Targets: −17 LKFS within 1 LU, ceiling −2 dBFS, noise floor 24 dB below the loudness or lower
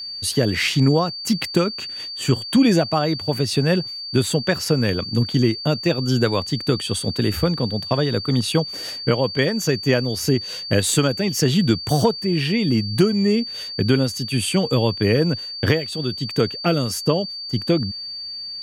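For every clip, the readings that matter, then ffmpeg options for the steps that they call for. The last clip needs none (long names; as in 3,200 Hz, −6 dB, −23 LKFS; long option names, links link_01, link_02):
interfering tone 4,600 Hz; level of the tone −29 dBFS; integrated loudness −20.5 LKFS; sample peak −3.5 dBFS; target loudness −17.0 LKFS
→ -af "bandreject=frequency=4600:width=30"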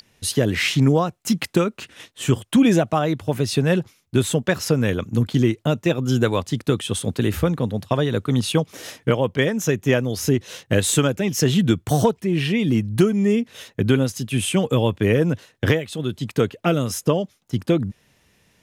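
interfering tone none found; integrated loudness −21.0 LKFS; sample peak −3.5 dBFS; target loudness −17.0 LKFS
→ -af "volume=4dB,alimiter=limit=-2dB:level=0:latency=1"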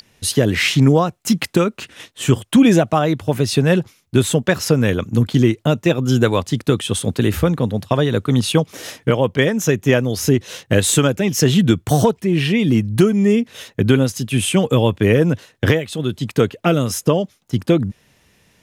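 integrated loudness −17.0 LKFS; sample peak −2.0 dBFS; background noise floor −59 dBFS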